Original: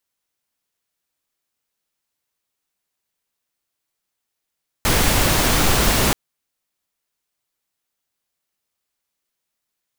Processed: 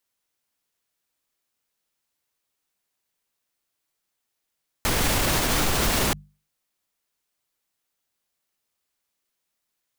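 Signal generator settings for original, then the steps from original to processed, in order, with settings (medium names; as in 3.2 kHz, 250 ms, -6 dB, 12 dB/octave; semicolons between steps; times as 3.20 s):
noise pink, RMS -16.5 dBFS 1.28 s
hum notches 50/100/150/200 Hz; peak limiter -13 dBFS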